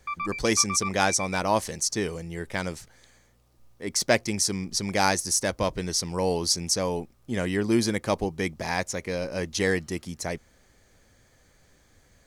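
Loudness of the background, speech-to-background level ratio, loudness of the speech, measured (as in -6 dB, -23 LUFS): -34.0 LUFS, 7.5 dB, -26.5 LUFS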